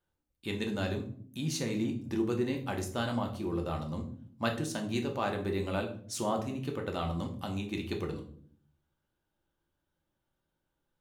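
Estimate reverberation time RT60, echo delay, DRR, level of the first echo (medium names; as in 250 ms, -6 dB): 0.55 s, no echo, 2.0 dB, no echo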